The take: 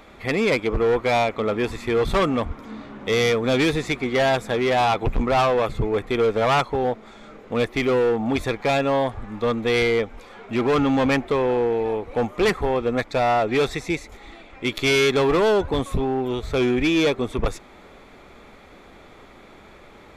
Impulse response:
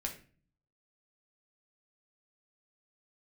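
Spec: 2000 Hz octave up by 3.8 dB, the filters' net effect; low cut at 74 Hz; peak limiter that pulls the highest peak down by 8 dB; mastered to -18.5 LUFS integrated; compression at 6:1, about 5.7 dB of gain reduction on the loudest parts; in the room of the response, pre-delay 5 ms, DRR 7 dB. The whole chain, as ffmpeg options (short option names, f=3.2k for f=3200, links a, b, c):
-filter_complex "[0:a]highpass=74,equalizer=f=2k:t=o:g=4.5,acompressor=threshold=-21dB:ratio=6,alimiter=limit=-19.5dB:level=0:latency=1,asplit=2[a][b];[1:a]atrim=start_sample=2205,adelay=5[c];[b][c]afir=irnorm=-1:irlink=0,volume=-7.5dB[d];[a][d]amix=inputs=2:normalize=0,volume=9.5dB"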